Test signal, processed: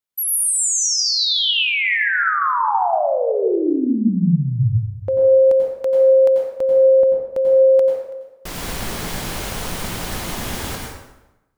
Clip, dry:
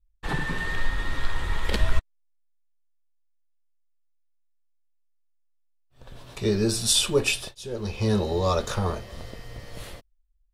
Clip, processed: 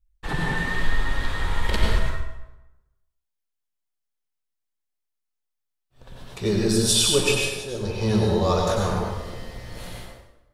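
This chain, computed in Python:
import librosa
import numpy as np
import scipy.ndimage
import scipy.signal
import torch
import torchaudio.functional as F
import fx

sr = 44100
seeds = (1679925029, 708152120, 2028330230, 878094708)

y = fx.rev_plate(x, sr, seeds[0], rt60_s=1.0, hf_ratio=0.7, predelay_ms=80, drr_db=-0.5)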